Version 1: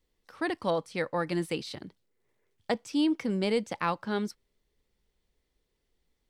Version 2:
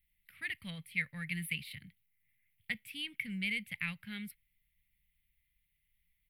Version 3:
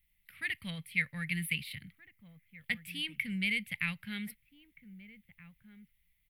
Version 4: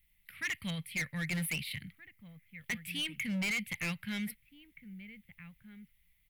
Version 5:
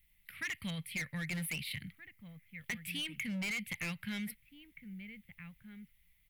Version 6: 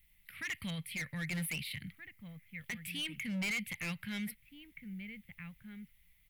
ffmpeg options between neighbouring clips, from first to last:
ffmpeg -i in.wav -af "firequalizer=gain_entry='entry(160,0);entry(330,-29);entry(1000,-27);entry(2100,10);entry(6100,-24);entry(11000,12)':delay=0.05:min_phase=1,volume=-3dB" out.wav
ffmpeg -i in.wav -filter_complex "[0:a]asplit=2[link_01][link_02];[link_02]adelay=1574,volume=-15dB,highshelf=frequency=4000:gain=-35.4[link_03];[link_01][link_03]amix=inputs=2:normalize=0,volume=3.5dB" out.wav
ffmpeg -i in.wav -af "volume=34.5dB,asoftclip=hard,volume=-34.5dB,volume=3.5dB" out.wav
ffmpeg -i in.wav -af "acompressor=threshold=-37dB:ratio=6,volume=1dB" out.wav
ffmpeg -i in.wav -af "alimiter=level_in=11.5dB:limit=-24dB:level=0:latency=1:release=149,volume=-11.5dB,volume=2.5dB" out.wav

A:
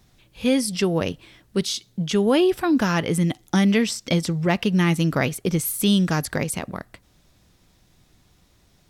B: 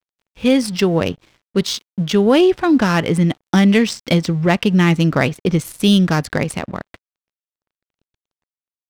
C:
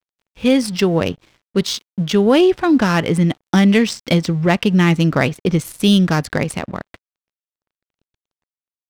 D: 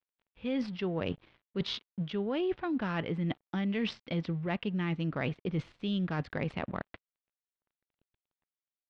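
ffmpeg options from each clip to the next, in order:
ffmpeg -i in.wav -af "adynamicsmooth=sensitivity=3.5:basefreq=3200,aeval=exprs='sgn(val(0))*max(abs(val(0))-0.00316,0)':channel_layout=same,volume=6dB" out.wav
ffmpeg -i in.wav -af anull out.wav
ffmpeg -i in.wav -af "lowpass=frequency=3600:width=0.5412,lowpass=frequency=3600:width=1.3066,areverse,acompressor=threshold=-23dB:ratio=5,areverse,volume=-7.5dB" out.wav

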